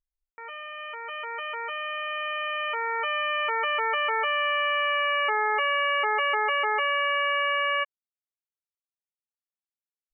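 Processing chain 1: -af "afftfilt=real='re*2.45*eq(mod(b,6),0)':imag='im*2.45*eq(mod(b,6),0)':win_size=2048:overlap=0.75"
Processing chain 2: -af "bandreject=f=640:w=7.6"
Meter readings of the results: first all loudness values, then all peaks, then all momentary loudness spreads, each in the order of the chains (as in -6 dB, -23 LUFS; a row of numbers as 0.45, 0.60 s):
-28.5, -25.5 LUFS; -17.0, -14.0 dBFS; 17, 11 LU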